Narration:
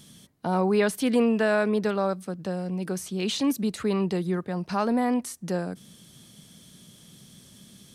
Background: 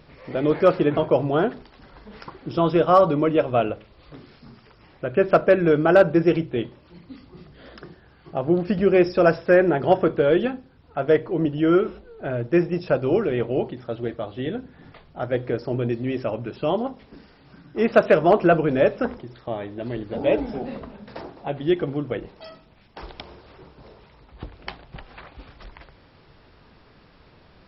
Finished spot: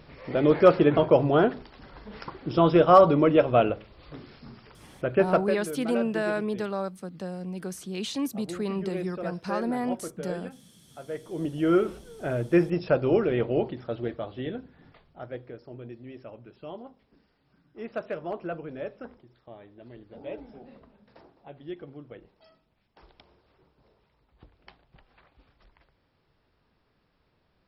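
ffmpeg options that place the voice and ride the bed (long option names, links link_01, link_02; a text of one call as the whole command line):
ffmpeg -i stem1.wav -i stem2.wav -filter_complex "[0:a]adelay=4750,volume=-5dB[link_01];[1:a]volume=16dB,afade=type=out:start_time=5.01:duration=0.58:silence=0.125893,afade=type=in:start_time=11.13:duration=0.79:silence=0.158489,afade=type=out:start_time=13.74:duration=1.8:silence=0.16788[link_02];[link_01][link_02]amix=inputs=2:normalize=0" out.wav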